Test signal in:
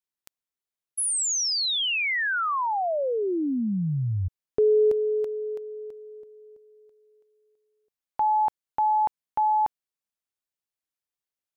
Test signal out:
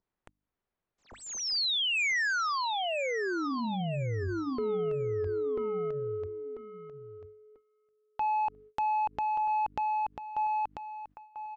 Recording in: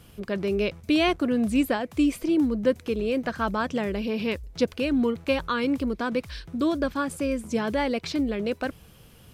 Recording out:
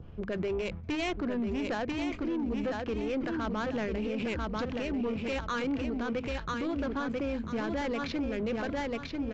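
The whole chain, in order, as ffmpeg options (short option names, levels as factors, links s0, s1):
-af "adynamicequalizer=threshold=0.01:dfrequency=2300:dqfactor=0.75:tfrequency=2300:tqfactor=0.75:attack=5:release=100:ratio=0.375:range=2:mode=boostabove:tftype=bell,adynamicsmooth=sensitivity=2.5:basefreq=1600,lowshelf=f=83:g=8.5,asoftclip=type=tanh:threshold=0.1,aecho=1:1:992|1984|2976:0.501|0.135|0.0365,aresample=16000,aresample=44100,bandreject=f=50:t=h:w=6,bandreject=f=100:t=h:w=6,bandreject=f=150:t=h:w=6,bandreject=f=200:t=h:w=6,bandreject=f=250:t=h:w=6,bandreject=f=300:t=h:w=6,alimiter=level_in=1.26:limit=0.0631:level=0:latency=1:release=33,volume=0.794,acompressor=mode=upward:threshold=0.00398:ratio=2.5:attack=40:release=49:knee=2.83:detection=peak,agate=range=0.0891:threshold=0.00355:ratio=16:release=316:detection=peak"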